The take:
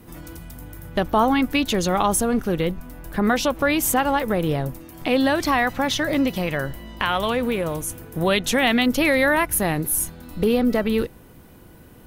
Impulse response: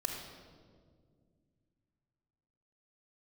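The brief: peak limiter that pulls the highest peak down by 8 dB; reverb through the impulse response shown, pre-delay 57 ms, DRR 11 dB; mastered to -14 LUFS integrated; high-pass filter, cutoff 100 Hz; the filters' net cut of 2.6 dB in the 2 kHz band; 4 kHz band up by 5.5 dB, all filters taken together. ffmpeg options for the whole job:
-filter_complex "[0:a]highpass=100,equalizer=f=2000:t=o:g=-5.5,equalizer=f=4000:t=o:g=9,alimiter=limit=0.211:level=0:latency=1,asplit=2[s0][s1];[1:a]atrim=start_sample=2205,adelay=57[s2];[s1][s2]afir=irnorm=-1:irlink=0,volume=0.224[s3];[s0][s3]amix=inputs=2:normalize=0,volume=2.99"

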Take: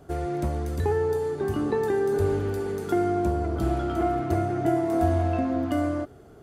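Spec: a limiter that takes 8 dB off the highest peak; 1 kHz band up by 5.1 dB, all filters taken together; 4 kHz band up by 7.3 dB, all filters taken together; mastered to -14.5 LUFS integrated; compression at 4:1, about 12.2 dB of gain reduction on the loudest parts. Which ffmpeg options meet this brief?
-af "equalizer=f=1000:t=o:g=8.5,equalizer=f=4000:t=o:g=9,acompressor=threshold=0.0251:ratio=4,volume=10.6,alimiter=limit=0.531:level=0:latency=1"

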